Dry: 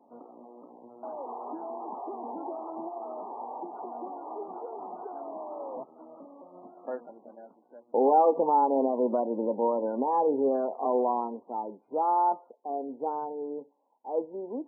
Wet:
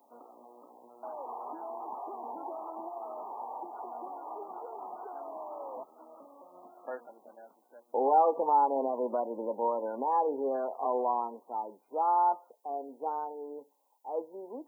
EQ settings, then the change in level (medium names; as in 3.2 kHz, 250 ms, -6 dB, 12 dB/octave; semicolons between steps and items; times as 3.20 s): tilt EQ +5 dB/octave; 0.0 dB